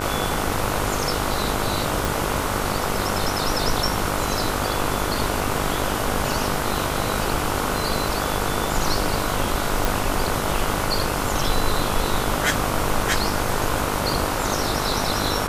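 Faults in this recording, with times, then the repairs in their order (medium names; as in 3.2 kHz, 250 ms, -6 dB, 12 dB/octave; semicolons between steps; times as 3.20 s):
buzz 50 Hz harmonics 30 -28 dBFS
2.05 s: pop
9.85 s: pop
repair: de-click; de-hum 50 Hz, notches 30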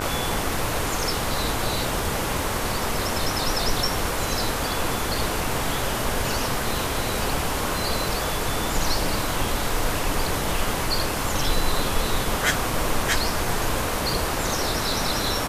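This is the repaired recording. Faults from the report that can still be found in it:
nothing left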